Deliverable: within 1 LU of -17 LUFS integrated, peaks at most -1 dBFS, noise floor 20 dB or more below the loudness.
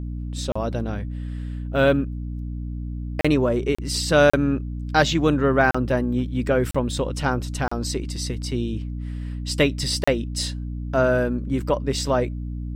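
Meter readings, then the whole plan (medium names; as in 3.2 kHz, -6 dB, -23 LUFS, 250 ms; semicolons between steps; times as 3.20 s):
dropouts 8; longest dropout 35 ms; hum 60 Hz; highest harmonic 300 Hz; hum level -27 dBFS; loudness -23.5 LUFS; peak level -3.0 dBFS; loudness target -17.0 LUFS
-> interpolate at 0.52/3.21/3.75/4.30/5.71/6.71/7.68/10.04 s, 35 ms; hum notches 60/120/180/240/300 Hz; trim +6.5 dB; peak limiter -1 dBFS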